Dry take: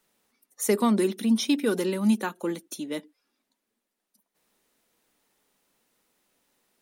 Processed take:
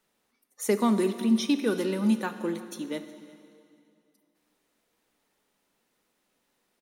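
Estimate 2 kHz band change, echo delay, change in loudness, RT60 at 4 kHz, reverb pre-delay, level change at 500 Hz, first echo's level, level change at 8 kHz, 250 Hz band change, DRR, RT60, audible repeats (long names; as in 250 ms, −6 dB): −1.5 dB, 364 ms, −1.0 dB, 2.3 s, 6 ms, −1.5 dB, −22.5 dB, −4.5 dB, −1.0 dB, 10.0 dB, 2.5 s, 1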